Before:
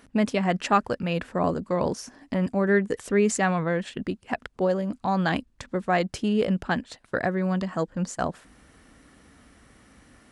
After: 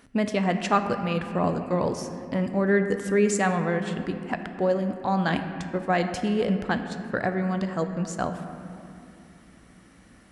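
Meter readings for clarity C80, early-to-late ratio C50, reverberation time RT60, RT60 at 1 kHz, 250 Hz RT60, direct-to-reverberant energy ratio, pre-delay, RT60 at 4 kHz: 9.0 dB, 8.0 dB, 2.9 s, 2.6 s, 4.5 s, 7.0 dB, 5 ms, 1.8 s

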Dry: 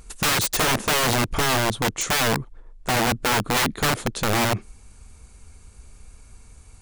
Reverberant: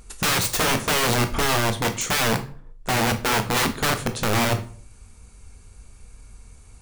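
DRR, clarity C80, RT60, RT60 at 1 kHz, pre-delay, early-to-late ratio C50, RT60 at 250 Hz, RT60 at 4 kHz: 7.0 dB, 18.5 dB, 0.50 s, 0.45 s, 14 ms, 13.5 dB, 0.60 s, 0.30 s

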